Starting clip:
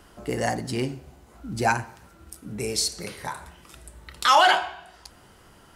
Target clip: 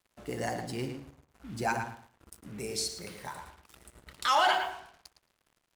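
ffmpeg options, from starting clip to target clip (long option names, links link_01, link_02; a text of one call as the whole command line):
ffmpeg -i in.wav -filter_complex "[0:a]acrusher=bits=6:mix=0:aa=0.5,asplit=2[link_01][link_02];[link_02]adelay=110,lowpass=frequency=3200:poles=1,volume=-6dB,asplit=2[link_03][link_04];[link_04]adelay=110,lowpass=frequency=3200:poles=1,volume=0.23,asplit=2[link_05][link_06];[link_06]adelay=110,lowpass=frequency=3200:poles=1,volume=0.23[link_07];[link_01][link_03][link_05][link_07]amix=inputs=4:normalize=0,volume=-8.5dB" out.wav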